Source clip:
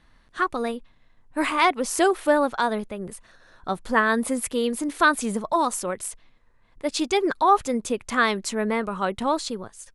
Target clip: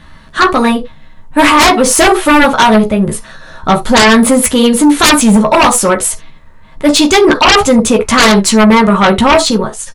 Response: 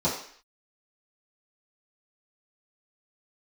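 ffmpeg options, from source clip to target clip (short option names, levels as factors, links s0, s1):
-filter_complex "[0:a]asplit=2[s0][s1];[s1]adelay=14,volume=0.596[s2];[s0][s2]amix=inputs=2:normalize=0,asplit=2[s3][s4];[1:a]atrim=start_sample=2205,atrim=end_sample=3528[s5];[s4][s5]afir=irnorm=-1:irlink=0,volume=0.126[s6];[s3][s6]amix=inputs=2:normalize=0,aeval=exprs='0.75*sin(PI/2*5.62*val(0)/0.75)':c=same"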